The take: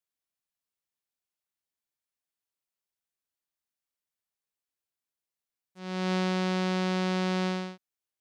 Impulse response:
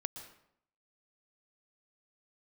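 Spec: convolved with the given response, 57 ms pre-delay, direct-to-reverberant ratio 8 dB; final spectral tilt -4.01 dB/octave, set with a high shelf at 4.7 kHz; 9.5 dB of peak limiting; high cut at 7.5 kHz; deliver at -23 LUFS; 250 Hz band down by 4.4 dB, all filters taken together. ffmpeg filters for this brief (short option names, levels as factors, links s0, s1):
-filter_complex "[0:a]lowpass=7500,equalizer=f=250:t=o:g=-8,highshelf=f=4700:g=5.5,alimiter=level_in=1.33:limit=0.0631:level=0:latency=1,volume=0.75,asplit=2[s0][s1];[1:a]atrim=start_sample=2205,adelay=57[s2];[s1][s2]afir=irnorm=-1:irlink=0,volume=0.447[s3];[s0][s3]amix=inputs=2:normalize=0,volume=7.08"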